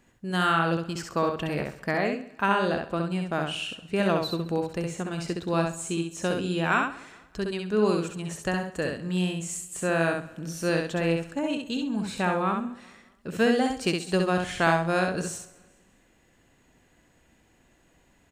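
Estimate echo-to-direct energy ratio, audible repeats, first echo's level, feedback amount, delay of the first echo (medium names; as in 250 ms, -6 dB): -3.5 dB, 6, -4.0 dB, no regular repeats, 66 ms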